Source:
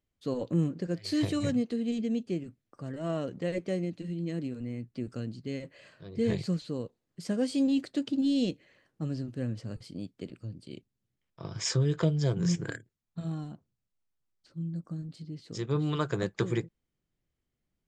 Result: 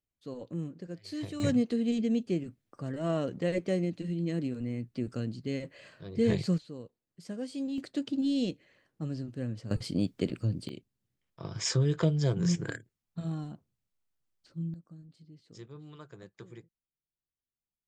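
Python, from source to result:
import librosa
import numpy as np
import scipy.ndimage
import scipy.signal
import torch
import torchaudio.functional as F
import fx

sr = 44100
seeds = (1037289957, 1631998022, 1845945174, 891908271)

y = fx.gain(x, sr, db=fx.steps((0.0, -9.0), (1.4, 2.0), (6.58, -8.5), (7.78, -2.0), (9.71, 10.0), (10.69, 0.0), (14.74, -12.5), (15.68, -19.0)))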